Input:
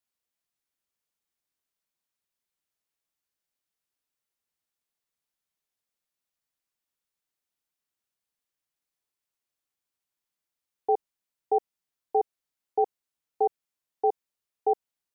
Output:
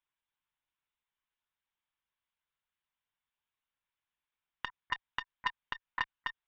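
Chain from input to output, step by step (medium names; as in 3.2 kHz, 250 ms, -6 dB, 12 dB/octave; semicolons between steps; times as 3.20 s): resonant low shelf 280 Hz -8 dB, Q 1.5; compression 8:1, threshold -24 dBFS, peak gain reduction 7 dB; speed mistake 33 rpm record played at 78 rpm; monotone LPC vocoder at 8 kHz 130 Hz; transformer saturation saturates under 1.9 kHz; trim +4.5 dB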